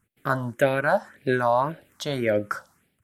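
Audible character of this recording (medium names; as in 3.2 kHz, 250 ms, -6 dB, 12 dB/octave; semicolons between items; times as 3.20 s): phasing stages 4, 1.8 Hz, lowest notch 370–1100 Hz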